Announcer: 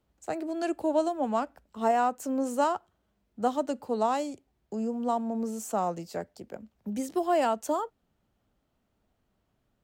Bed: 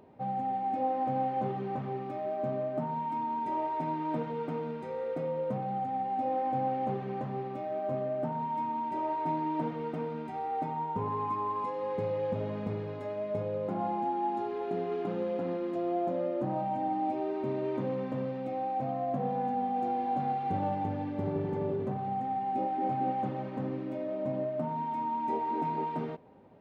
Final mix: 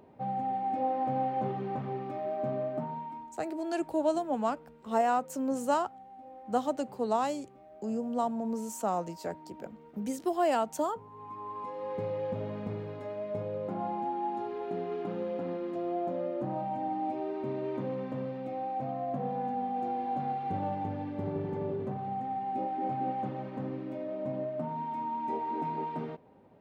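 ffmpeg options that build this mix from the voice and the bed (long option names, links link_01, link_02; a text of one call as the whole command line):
ffmpeg -i stem1.wav -i stem2.wav -filter_complex "[0:a]adelay=3100,volume=-2dB[link_01];[1:a]volume=16dB,afade=type=out:start_time=2.66:duration=0.67:silence=0.125893,afade=type=in:start_time=11.11:duration=0.87:silence=0.158489[link_02];[link_01][link_02]amix=inputs=2:normalize=0" out.wav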